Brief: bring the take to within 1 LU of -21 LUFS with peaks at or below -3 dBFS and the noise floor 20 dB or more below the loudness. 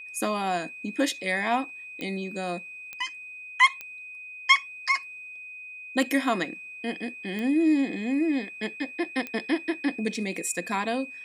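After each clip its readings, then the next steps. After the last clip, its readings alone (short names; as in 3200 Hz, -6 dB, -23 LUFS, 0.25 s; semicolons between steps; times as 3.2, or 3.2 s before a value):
clicks 5; steady tone 2500 Hz; tone level -39 dBFS; loudness -27.0 LUFS; peak -5.5 dBFS; loudness target -21.0 LUFS
-> de-click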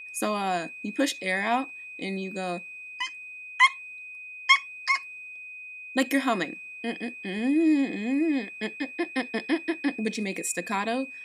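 clicks 0; steady tone 2500 Hz; tone level -39 dBFS
-> notch 2500 Hz, Q 30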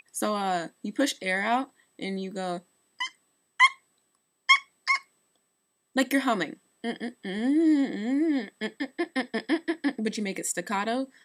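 steady tone none; loudness -27.5 LUFS; peak -5.5 dBFS; loudness target -21.0 LUFS
-> gain +6.5 dB; limiter -3 dBFS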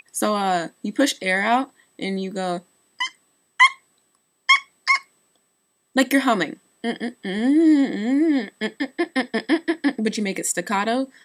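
loudness -21.5 LUFS; peak -3.0 dBFS; noise floor -69 dBFS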